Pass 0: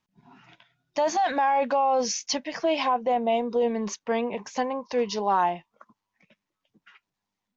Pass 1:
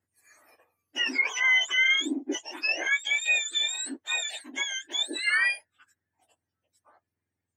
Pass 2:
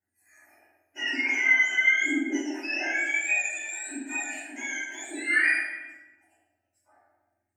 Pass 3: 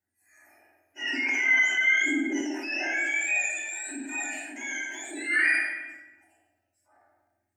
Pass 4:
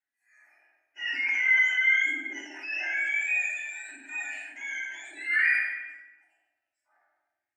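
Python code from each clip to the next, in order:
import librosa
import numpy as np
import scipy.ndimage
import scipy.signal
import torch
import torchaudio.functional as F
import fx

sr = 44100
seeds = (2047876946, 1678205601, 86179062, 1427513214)

y1 = fx.octave_mirror(x, sr, pivot_hz=1300.0)
y1 = fx.graphic_eq_10(y1, sr, hz=(125, 250, 500, 1000, 2000), db=(-9, -4, -7, -4, 3))
y2 = fx.fixed_phaser(y1, sr, hz=730.0, stages=8)
y2 = fx.room_shoebox(y2, sr, seeds[0], volume_m3=640.0, walls='mixed', distance_m=4.9)
y2 = y2 * 10.0 ** (-7.5 / 20.0)
y3 = fx.transient(y2, sr, attack_db=-4, sustain_db=4)
y4 = fx.bandpass_q(y3, sr, hz=2100.0, q=1.1)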